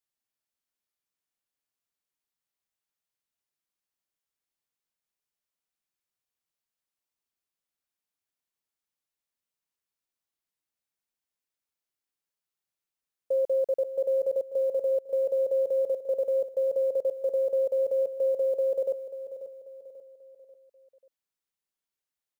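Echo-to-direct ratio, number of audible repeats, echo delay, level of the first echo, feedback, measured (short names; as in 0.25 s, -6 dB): -11.0 dB, 4, 0.539 s, -12.0 dB, 43%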